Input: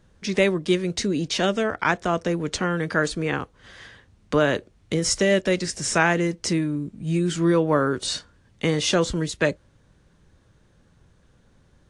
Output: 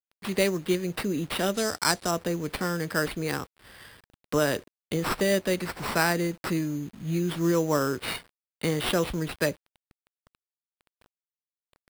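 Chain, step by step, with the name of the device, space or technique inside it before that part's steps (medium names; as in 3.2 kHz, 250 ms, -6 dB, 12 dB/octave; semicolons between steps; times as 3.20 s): early 8-bit sampler (sample-rate reducer 6.6 kHz, jitter 0%; bit crusher 8-bit); 1.54–2.11 s: high-order bell 6.3 kHz +8.5 dB; trim -4.5 dB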